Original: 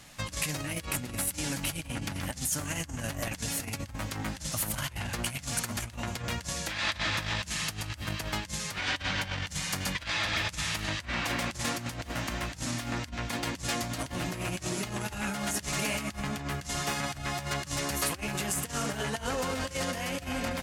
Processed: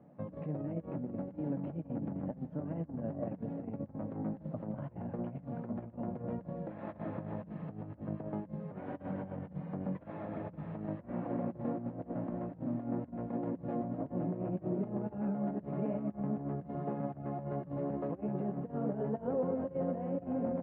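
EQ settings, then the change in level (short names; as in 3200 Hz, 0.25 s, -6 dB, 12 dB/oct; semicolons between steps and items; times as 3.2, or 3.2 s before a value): Chebyshev band-pass 170–580 Hz, order 2; air absorption 400 m; +2.5 dB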